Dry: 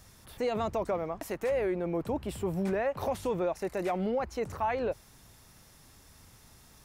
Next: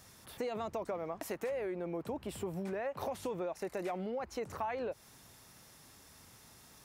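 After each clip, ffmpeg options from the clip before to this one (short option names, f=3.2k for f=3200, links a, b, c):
-af "acompressor=threshold=-34dB:ratio=6,highpass=f=160:p=1"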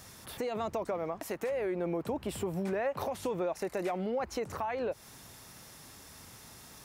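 -af "alimiter=level_in=6.5dB:limit=-24dB:level=0:latency=1:release=481,volume=-6.5dB,volume=6.5dB"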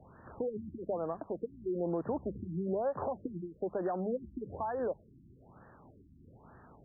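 -filter_complex "[0:a]acrossover=split=110|940[a][b][c];[c]asoftclip=type=tanh:threshold=-39dB[d];[a][b][d]amix=inputs=3:normalize=0,bandreject=f=50:t=h:w=6,bandreject=f=100:t=h:w=6,bandreject=f=150:t=h:w=6,bandreject=f=200:t=h:w=6,afftfilt=real='re*lt(b*sr/1024,340*pow(1900/340,0.5+0.5*sin(2*PI*1.1*pts/sr)))':imag='im*lt(b*sr/1024,340*pow(1900/340,0.5+0.5*sin(2*PI*1.1*pts/sr)))':win_size=1024:overlap=0.75"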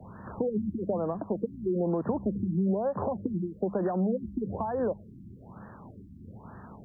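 -filter_complex "[0:a]equalizer=f=100:t=o:w=0.33:g=8,equalizer=f=200:t=o:w=0.33:g=11,equalizer=f=1k:t=o:w=0.33:g=4,acrossover=split=170|640[a][b][c];[a]acompressor=threshold=-45dB:ratio=4[d];[b]acompressor=threshold=-34dB:ratio=4[e];[c]acompressor=threshold=-45dB:ratio=4[f];[d][e][f]amix=inputs=3:normalize=0,volume=7dB"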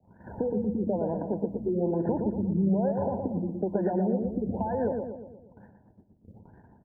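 -filter_complex "[0:a]asuperstop=centerf=1200:order=12:qfactor=2.7,agate=range=-20dB:threshold=-44dB:ratio=16:detection=peak,asplit=2[a][b];[b]adelay=118,lowpass=f=1.2k:p=1,volume=-4dB,asplit=2[c][d];[d]adelay=118,lowpass=f=1.2k:p=1,volume=0.55,asplit=2[e][f];[f]adelay=118,lowpass=f=1.2k:p=1,volume=0.55,asplit=2[g][h];[h]adelay=118,lowpass=f=1.2k:p=1,volume=0.55,asplit=2[i][j];[j]adelay=118,lowpass=f=1.2k:p=1,volume=0.55,asplit=2[k][l];[l]adelay=118,lowpass=f=1.2k:p=1,volume=0.55,asplit=2[m][n];[n]adelay=118,lowpass=f=1.2k:p=1,volume=0.55[o];[c][e][g][i][k][m][o]amix=inputs=7:normalize=0[p];[a][p]amix=inputs=2:normalize=0"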